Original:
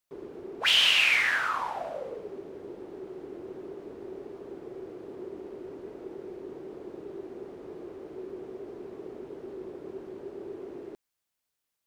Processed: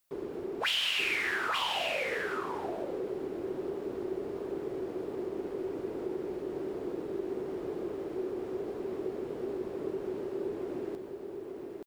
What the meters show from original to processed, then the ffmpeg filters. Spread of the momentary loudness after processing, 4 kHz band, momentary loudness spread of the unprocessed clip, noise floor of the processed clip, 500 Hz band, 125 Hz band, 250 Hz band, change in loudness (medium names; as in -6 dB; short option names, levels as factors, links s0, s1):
8 LU, -7.0 dB, 21 LU, -42 dBFS, +4.5 dB, +4.5 dB, +5.0 dB, -10.0 dB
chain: -filter_complex "[0:a]highshelf=f=11000:g=6.5,bandreject=f=6100:w=29,acompressor=threshold=0.0141:ratio=3,asplit=2[s0][s1];[s1]aecho=0:1:877:0.596[s2];[s0][s2]amix=inputs=2:normalize=0,volume=1.68"